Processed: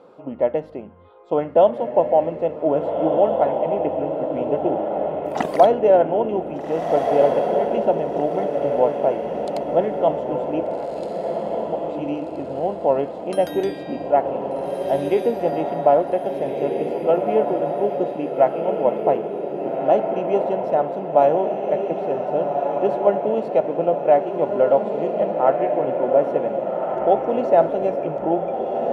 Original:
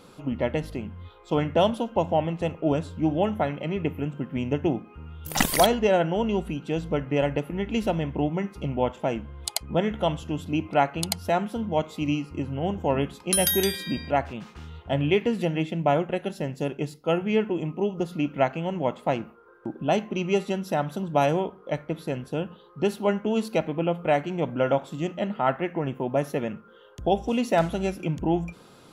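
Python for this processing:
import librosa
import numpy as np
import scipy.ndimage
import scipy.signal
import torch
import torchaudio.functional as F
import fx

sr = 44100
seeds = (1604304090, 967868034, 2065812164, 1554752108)

y = fx.auto_swell(x, sr, attack_ms=574.0, at=(10.66, 11.85))
y = fx.bandpass_q(y, sr, hz=590.0, q=1.8)
y = fx.echo_diffused(y, sr, ms=1606, feedback_pct=46, wet_db=-3.5)
y = y * librosa.db_to_amplitude(8.5)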